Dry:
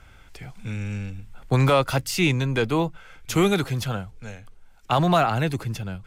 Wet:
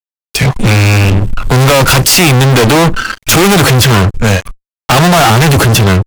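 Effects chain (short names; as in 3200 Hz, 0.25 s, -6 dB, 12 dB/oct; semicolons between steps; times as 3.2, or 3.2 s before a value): spectral noise reduction 16 dB; fuzz box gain 46 dB, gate -52 dBFS; gain +7.5 dB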